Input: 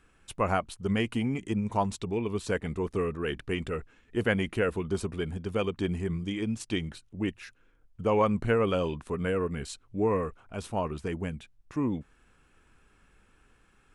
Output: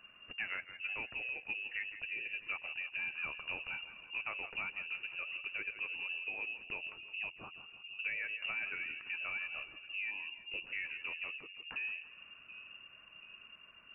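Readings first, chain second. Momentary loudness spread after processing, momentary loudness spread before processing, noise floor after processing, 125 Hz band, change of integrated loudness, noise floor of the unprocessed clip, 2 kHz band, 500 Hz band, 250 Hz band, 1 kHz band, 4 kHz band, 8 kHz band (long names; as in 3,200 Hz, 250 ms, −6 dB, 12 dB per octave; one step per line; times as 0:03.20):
13 LU, 11 LU, −59 dBFS, −33.0 dB, −9.0 dB, −64 dBFS, +1.0 dB, −28.5 dB, −32.5 dB, −18.0 dB, −3.5 dB, below −35 dB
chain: gain on a spectral selection 0:10.11–0:10.66, 420–1,700 Hz −21 dB
downward compressor 4 to 1, threshold −41 dBFS, peak gain reduction 17.5 dB
flanger 1.8 Hz, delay 0.8 ms, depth 4.1 ms, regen +64%
echo with a time of its own for lows and highs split 330 Hz, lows 725 ms, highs 165 ms, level −12.5 dB
voice inversion scrambler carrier 2,800 Hz
level +5 dB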